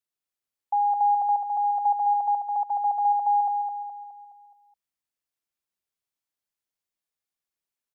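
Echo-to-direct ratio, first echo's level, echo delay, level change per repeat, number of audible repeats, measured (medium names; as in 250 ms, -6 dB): -4.0 dB, -5.0 dB, 210 ms, -6.5 dB, 5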